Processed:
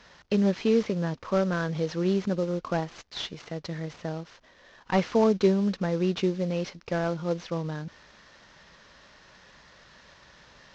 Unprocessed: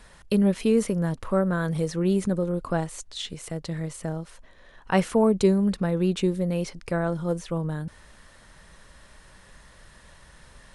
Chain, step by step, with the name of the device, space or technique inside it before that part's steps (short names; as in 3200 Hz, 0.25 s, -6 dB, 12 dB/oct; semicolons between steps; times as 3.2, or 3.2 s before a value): early wireless headset (HPF 190 Hz 6 dB/oct; CVSD 32 kbps)